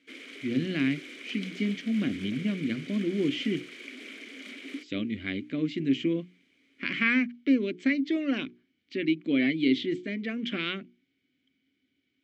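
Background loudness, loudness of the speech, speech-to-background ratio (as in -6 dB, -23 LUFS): -42.0 LUFS, -29.5 LUFS, 12.5 dB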